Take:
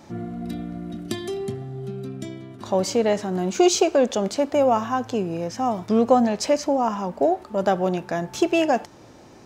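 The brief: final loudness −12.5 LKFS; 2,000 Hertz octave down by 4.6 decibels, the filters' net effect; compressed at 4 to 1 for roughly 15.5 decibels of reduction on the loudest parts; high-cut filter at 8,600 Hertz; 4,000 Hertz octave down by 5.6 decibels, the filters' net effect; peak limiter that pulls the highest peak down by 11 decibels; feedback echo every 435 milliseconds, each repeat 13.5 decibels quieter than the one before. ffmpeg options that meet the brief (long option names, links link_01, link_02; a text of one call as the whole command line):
ffmpeg -i in.wav -af "lowpass=8600,equalizer=frequency=2000:width_type=o:gain=-4.5,equalizer=frequency=4000:width_type=o:gain=-6,acompressor=threshold=-32dB:ratio=4,alimiter=level_in=6.5dB:limit=-24dB:level=0:latency=1,volume=-6.5dB,aecho=1:1:435|870:0.211|0.0444,volume=26.5dB" out.wav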